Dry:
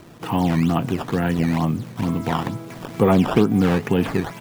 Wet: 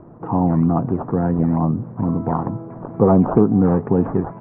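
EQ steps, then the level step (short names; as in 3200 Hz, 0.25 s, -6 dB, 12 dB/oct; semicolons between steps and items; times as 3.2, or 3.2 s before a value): LPF 1100 Hz 24 dB/oct; +2.5 dB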